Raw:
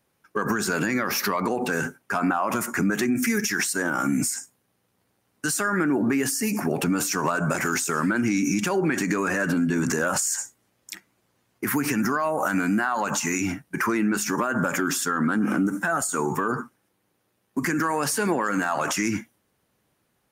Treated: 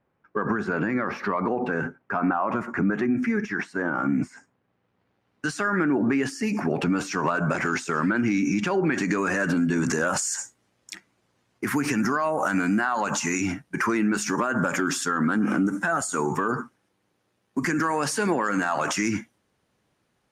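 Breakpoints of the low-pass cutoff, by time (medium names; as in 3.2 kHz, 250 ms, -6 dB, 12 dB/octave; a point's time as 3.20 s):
4.33 s 1.7 kHz
5.47 s 4 kHz
8.79 s 4 kHz
9.33 s 7.8 kHz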